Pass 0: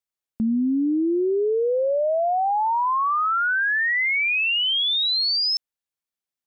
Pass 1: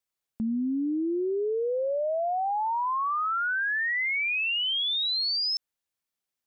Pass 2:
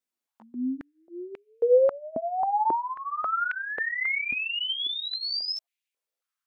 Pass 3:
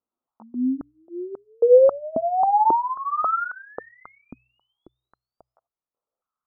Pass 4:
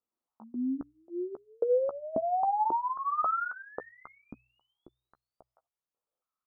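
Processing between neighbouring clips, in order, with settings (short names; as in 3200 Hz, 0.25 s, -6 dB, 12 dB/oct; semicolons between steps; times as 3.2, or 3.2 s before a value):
limiter -27 dBFS, peak gain reduction 9 dB; gain +2.5 dB
chorus voices 4, 0.32 Hz, delay 16 ms, depth 4.3 ms; stepped high-pass 3.7 Hz 250–2400 Hz
Chebyshev low-pass 1300 Hz, order 5; de-hum 61.94 Hz, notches 2; gain +7 dB
compressor 6:1, threshold -21 dBFS, peak gain reduction 11.5 dB; doubler 14 ms -11 dB; gain -4.5 dB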